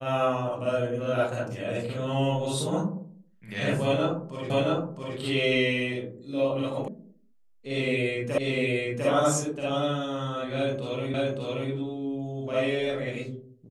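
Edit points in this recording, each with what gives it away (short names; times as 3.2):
4.5 repeat of the last 0.67 s
6.88 sound cut off
8.38 repeat of the last 0.7 s
11.14 repeat of the last 0.58 s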